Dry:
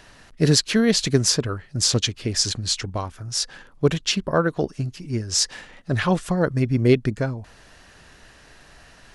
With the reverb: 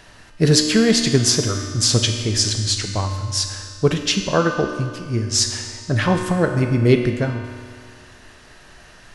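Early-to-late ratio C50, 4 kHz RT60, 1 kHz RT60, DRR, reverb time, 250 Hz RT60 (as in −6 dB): 5.5 dB, 1.8 s, 2.0 s, 3.5 dB, 2.0 s, 2.0 s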